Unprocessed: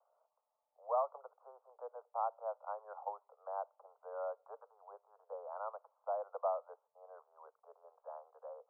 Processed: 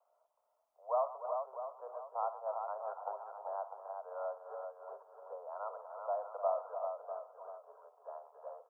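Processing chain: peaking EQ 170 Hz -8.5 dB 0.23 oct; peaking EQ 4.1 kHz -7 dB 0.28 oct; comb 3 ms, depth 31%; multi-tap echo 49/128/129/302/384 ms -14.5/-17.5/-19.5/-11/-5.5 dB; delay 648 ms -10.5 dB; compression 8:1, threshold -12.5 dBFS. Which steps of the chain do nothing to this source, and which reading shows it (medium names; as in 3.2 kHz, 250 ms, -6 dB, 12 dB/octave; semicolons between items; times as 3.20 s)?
peaking EQ 170 Hz: input has nothing below 400 Hz; peaking EQ 4.1 kHz: input has nothing above 1.5 kHz; compression, threshold -12.5 dBFS: peak at its input -22.5 dBFS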